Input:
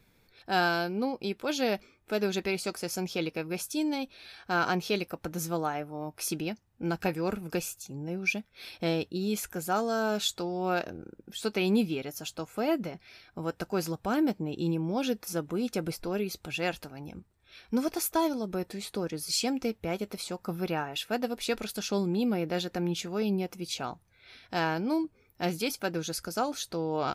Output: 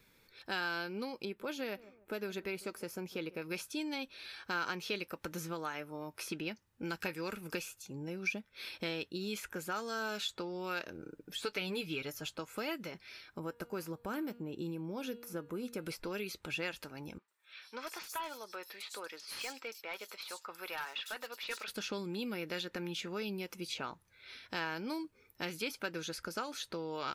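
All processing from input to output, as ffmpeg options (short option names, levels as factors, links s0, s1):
-filter_complex "[0:a]asettb=1/sr,asplit=3[s0][s1][s2];[s0]atrim=end=1.254[s3];[s1]atrim=start=1.25:end=3.42,asetpts=PTS-STARTPTS,afade=t=in:d=0.004:c=qsin,afade=t=out:st=2.166:d=0.004:c=qsin,equalizer=f=5200:w=0.41:g=-13.5,asplit=2[s4][s5];[s5]adelay=148,lowpass=f=1400:p=1,volume=0.0841,asplit=2[s6][s7];[s7]adelay=148,lowpass=f=1400:p=1,volume=0.27[s8];[s4][s6][s8]amix=inputs=3:normalize=0,atrim=end_sample=95697[s9];[s2]atrim=start=3.416[s10];[s3][s9]acrossfade=d=0.004:c1=hsin:c2=qsin[s11];[s11][s10]acrossfade=d=0.004:c1=qsin:c2=hsin,asettb=1/sr,asplit=3[s12][s13][s14];[s12]atrim=end=11.034[s15];[s13]atrim=start=11.03:end=12.29,asetpts=PTS-STARTPTS,afade=t=in:d=0.004:c=qsin,afade=t=out:st=1.256:d=0.004:c=qsin,asubboost=boost=7.5:cutoff=110,aecho=1:1:6.8:0.62,atrim=end_sample=55566[s16];[s14]atrim=start=12.286[s17];[s15][s16]acrossfade=d=0.004:c1=hsin:c2=qsin[s18];[s18][s17]acrossfade=d=0.004:c1=qsin:c2=hsin,asettb=1/sr,asplit=3[s19][s20][s21];[s19]atrim=end=13.394[s22];[s20]atrim=start=13.39:end=15.86,asetpts=PTS-STARTPTS,afade=t=in:d=0.004:c=qsin,afade=t=out:st=2.466:d=0.004:c=qsin,equalizer=f=4500:w=0.42:g=-12,bandreject=f=237.6:t=h:w=4,bandreject=f=475.2:t=h:w=4,bandreject=f=712.8:t=h:w=4,bandreject=f=950.4:t=h:w=4,bandreject=f=1188:t=h:w=4,bandreject=f=1425.6:t=h:w=4,bandreject=f=1663.2:t=h:w=4,bandreject=f=1900.8:t=h:w=4,bandreject=f=2138.4:t=h:w=4,bandreject=f=2376:t=h:w=4,bandreject=f=2613.6:t=h:w=4,bandreject=f=2851.2:t=h:w=4,bandreject=f=3088.8:t=h:w=4,bandreject=f=3326.4:t=h:w=4,bandreject=f=3564:t=h:w=4,bandreject=f=3801.6:t=h:w=4,bandreject=f=4039.2:t=h:w=4,bandreject=f=4276.8:t=h:w=4,bandreject=f=4514.4:t=h:w=4[s23];[s21]atrim=start=15.856[s24];[s22][s23]acrossfade=d=0.004:c1=hsin:c2=qsin[s25];[s25][s24]acrossfade=d=0.004:c1=qsin:c2=hsin,asettb=1/sr,asplit=3[s26][s27][s28];[s26]atrim=end=17.184[s29];[s27]atrim=start=17.18:end=21.68,asetpts=PTS-STARTPTS,afade=t=in:d=0.004:c=qsin,afade=t=out:st=4.496:d=0.004:c=qsin,highpass=860,volume=42.2,asoftclip=hard,volume=0.0237,acrossover=split=4500[s30][s31];[s31]adelay=100[s32];[s30][s32]amix=inputs=2:normalize=0,atrim=end_sample=198450[s33];[s28]atrim=start=21.676[s34];[s29][s33]acrossfade=d=0.004:c1=hsin:c2=qsin[s35];[s35][s34]acrossfade=d=0.004:c1=qsin:c2=hsin,lowshelf=f=280:g=-9,acrossover=split=1500|3300[s36][s37][s38];[s36]acompressor=threshold=0.0112:ratio=4[s39];[s37]acompressor=threshold=0.01:ratio=4[s40];[s38]acompressor=threshold=0.00282:ratio=4[s41];[s39][s40][s41]amix=inputs=3:normalize=0,equalizer=f=720:t=o:w=0.24:g=-11.5,volume=1.19"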